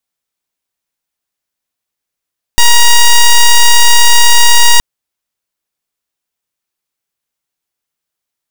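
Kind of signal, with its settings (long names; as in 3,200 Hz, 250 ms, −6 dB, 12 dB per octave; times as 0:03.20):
pulse wave 948 Hz, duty 7% −3.5 dBFS 2.22 s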